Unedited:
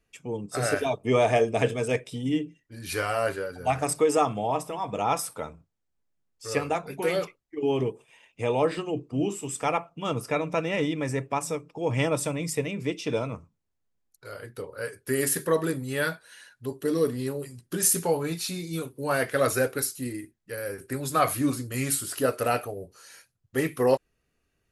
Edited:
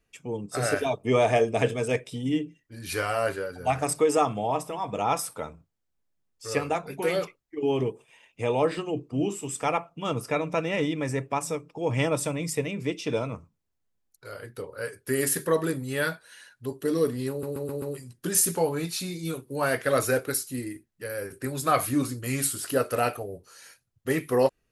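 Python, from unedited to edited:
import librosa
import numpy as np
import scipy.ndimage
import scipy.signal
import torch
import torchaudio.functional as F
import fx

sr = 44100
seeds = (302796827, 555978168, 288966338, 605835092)

y = fx.edit(x, sr, fx.stutter(start_s=17.3, slice_s=0.13, count=5), tone=tone)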